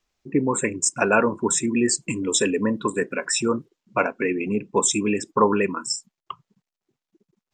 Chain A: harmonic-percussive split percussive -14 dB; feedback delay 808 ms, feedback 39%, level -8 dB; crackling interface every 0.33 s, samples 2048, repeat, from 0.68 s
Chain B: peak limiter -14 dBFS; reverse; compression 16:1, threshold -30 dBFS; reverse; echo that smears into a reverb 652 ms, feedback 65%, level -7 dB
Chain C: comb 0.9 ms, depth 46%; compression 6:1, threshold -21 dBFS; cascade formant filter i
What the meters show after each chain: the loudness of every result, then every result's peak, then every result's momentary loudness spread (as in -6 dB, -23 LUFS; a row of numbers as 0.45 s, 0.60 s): -27.0 LUFS, -34.0 LUFS, -34.0 LUFS; -9.5 dBFS, -17.5 dBFS, -19.5 dBFS; 12 LU, 7 LU, 9 LU